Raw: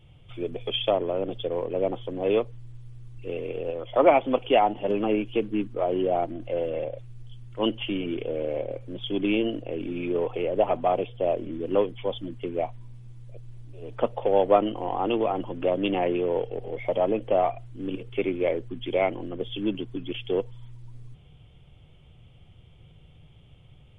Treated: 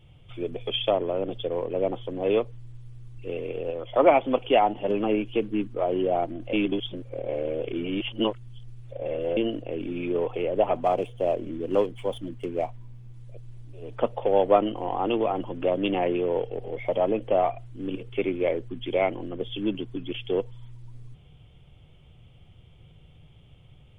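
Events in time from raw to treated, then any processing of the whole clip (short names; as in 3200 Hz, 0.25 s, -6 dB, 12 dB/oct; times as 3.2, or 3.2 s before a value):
6.53–9.37 reverse
10.75–13.14 median filter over 9 samples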